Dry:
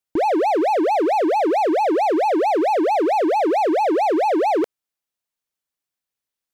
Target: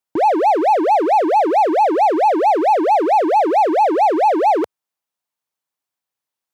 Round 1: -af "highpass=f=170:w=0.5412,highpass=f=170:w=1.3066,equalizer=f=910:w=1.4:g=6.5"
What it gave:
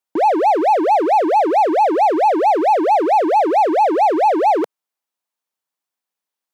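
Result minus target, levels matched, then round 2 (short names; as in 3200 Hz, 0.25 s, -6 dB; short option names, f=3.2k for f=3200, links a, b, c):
125 Hz band -4.5 dB
-af "highpass=f=84:w=0.5412,highpass=f=84:w=1.3066,equalizer=f=910:w=1.4:g=6.5"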